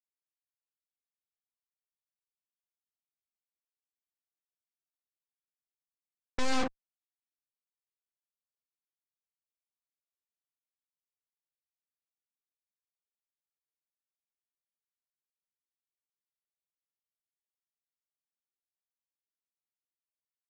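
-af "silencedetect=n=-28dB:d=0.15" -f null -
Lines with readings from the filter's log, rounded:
silence_start: 0.00
silence_end: 6.39 | silence_duration: 6.39
silence_start: 6.67
silence_end: 20.49 | silence_duration: 13.82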